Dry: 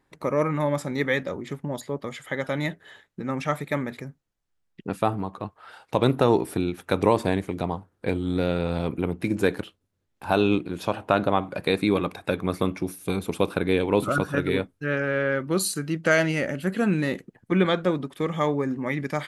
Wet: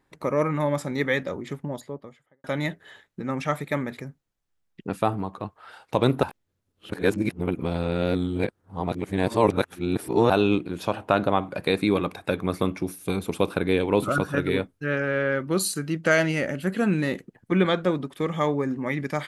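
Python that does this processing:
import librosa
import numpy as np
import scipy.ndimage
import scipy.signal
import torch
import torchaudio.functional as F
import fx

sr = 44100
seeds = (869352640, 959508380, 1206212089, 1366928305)

y = fx.studio_fade_out(x, sr, start_s=1.48, length_s=0.96)
y = fx.edit(y, sr, fx.reverse_span(start_s=6.23, length_s=4.07), tone=tone)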